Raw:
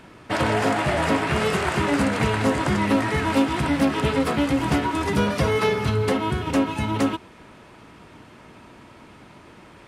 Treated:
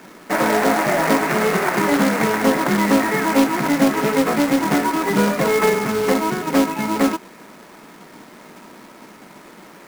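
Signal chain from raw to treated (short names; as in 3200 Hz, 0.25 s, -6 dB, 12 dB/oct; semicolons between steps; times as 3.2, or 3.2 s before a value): elliptic band-pass 180–2200 Hz; companded quantiser 4-bit; gain +5 dB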